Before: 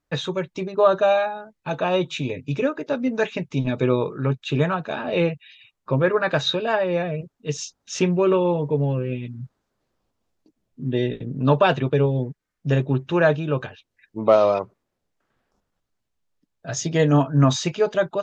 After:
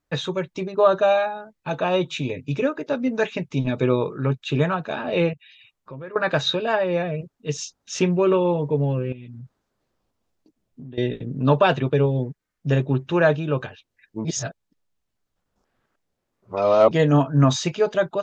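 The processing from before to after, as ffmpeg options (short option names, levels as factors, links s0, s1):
-filter_complex "[0:a]asettb=1/sr,asplit=3[s0][s1][s2];[s0]atrim=end=5.334[s3];[s1]atrim=start=5.33:end=6.16,asetpts=PTS-STARTPTS,afade=t=in:d=0.004:c=qsin,afade=t=out:st=0.826:d=0.004:c=qsin,acompressor=threshold=0.00447:ratio=2:attack=3.2:release=140:knee=1:detection=peak[s4];[s2]atrim=start=6.156[s5];[s3][s4]acrossfade=d=0.004:c1=hsin:c2=qsin[s6];[s6][s5]acrossfade=d=0.004:c1=qsin:c2=hsin,asettb=1/sr,asplit=3[s7][s8][s9];[s7]atrim=end=9.124[s10];[s8]atrim=start=9.12:end=10.98,asetpts=PTS-STARTPTS,afade=t=in:d=0.004:c=qsin,afade=t=out:st=1.856:d=0.004:c=qsin,acompressor=threshold=0.0178:ratio=10:attack=3.2:release=140:knee=1:detection=peak[s11];[s9]atrim=start=10.976[s12];[s10][s11]acrossfade=d=0.004:c1=hsin:c2=qsin[s13];[s13][s12]acrossfade=d=0.004:c1=qsin:c2=hsin,asplit=3[s14][s15][s16];[s14]atrim=end=14.252[s17];[s15]atrim=start=14.248:end=16.912,asetpts=PTS-STARTPTS,areverse[s18];[s16]atrim=start=16.908[s19];[s17][s18]acrossfade=d=0.004:c1=hsin:c2=hsin[s20];[s20][s19]acrossfade=d=0.004:c1=hsin:c2=hsin"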